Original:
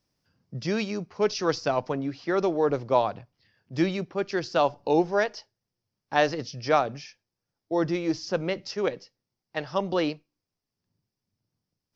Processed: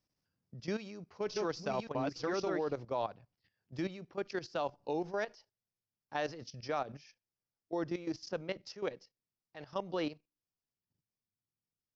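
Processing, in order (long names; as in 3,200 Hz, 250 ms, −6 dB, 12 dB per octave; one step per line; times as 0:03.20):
0:00.76–0:02.76: delay that plays each chunk backwards 557 ms, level −1.5 dB
output level in coarse steps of 13 dB
level −7.5 dB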